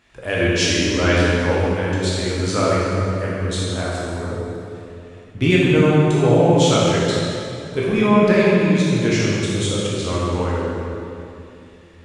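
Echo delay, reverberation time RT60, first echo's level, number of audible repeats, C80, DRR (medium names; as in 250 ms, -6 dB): no echo, 2.8 s, no echo, no echo, -1.5 dB, -7.0 dB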